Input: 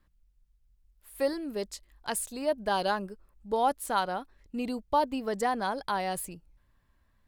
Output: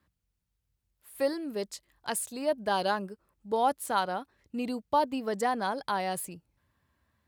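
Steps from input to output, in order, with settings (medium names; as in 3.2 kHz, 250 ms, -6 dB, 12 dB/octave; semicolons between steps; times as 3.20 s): high-pass 69 Hz 24 dB/octave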